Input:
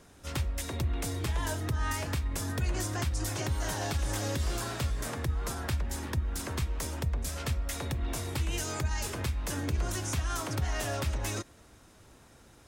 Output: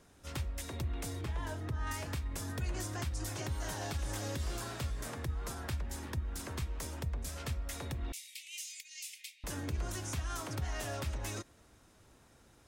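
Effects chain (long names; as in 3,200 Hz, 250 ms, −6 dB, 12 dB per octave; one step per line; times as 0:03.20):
0:01.21–0:01.87: high-shelf EQ 4,000 Hz −10.5 dB
0:08.12–0:09.44: Butterworth high-pass 2,100 Hz 72 dB per octave
level −6 dB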